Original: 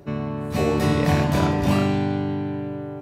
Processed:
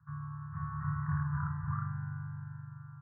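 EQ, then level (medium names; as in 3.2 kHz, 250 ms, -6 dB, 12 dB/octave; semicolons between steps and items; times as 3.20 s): high-pass 96 Hz; Chebyshev band-stop 150–1100 Hz, order 4; steep low-pass 1.6 kHz 72 dB/octave; -8.5 dB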